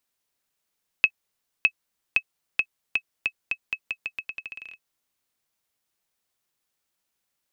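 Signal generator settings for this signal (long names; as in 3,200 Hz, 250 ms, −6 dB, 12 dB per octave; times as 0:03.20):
bouncing ball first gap 0.61 s, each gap 0.84, 2,580 Hz, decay 64 ms −5.5 dBFS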